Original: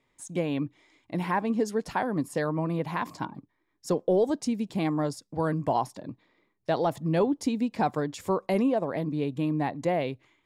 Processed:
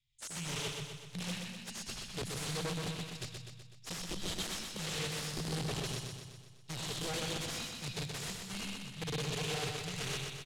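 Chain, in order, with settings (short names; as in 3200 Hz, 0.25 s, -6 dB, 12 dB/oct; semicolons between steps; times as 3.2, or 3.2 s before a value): elliptic band-stop 120–3100 Hz, stop band 50 dB; digital reverb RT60 0.69 s, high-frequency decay 0.75×, pre-delay 45 ms, DRR 0 dB; wrapped overs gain 38.5 dB; gate -46 dBFS, range -9 dB; LPF 8200 Hz 12 dB/oct; feedback echo 0.125 s, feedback 57%, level -4.5 dB; gain +5 dB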